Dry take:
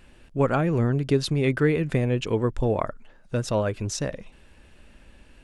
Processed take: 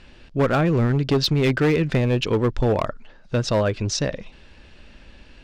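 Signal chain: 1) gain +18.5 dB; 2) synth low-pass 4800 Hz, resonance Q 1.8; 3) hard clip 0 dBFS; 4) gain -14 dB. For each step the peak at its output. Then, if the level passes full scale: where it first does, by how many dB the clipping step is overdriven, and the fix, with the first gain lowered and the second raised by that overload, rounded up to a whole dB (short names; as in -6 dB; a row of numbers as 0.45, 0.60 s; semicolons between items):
+9.0, +9.0, 0.0, -14.0 dBFS; step 1, 9.0 dB; step 1 +9.5 dB, step 4 -5 dB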